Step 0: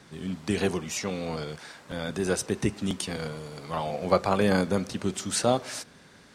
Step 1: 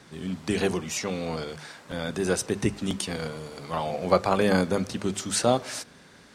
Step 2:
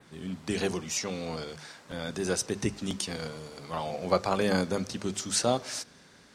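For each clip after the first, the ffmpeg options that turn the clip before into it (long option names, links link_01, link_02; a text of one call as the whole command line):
ffmpeg -i in.wav -af "bandreject=frequency=50:width_type=h:width=6,bandreject=frequency=100:width_type=h:width=6,bandreject=frequency=150:width_type=h:width=6,bandreject=frequency=200:width_type=h:width=6,volume=1.5dB" out.wav
ffmpeg -i in.wav -af "adynamicequalizer=threshold=0.00398:dfrequency=5600:dqfactor=1.3:tfrequency=5600:tqfactor=1.3:attack=5:release=100:ratio=0.375:range=3:mode=boostabove:tftype=bell,volume=-4.5dB" out.wav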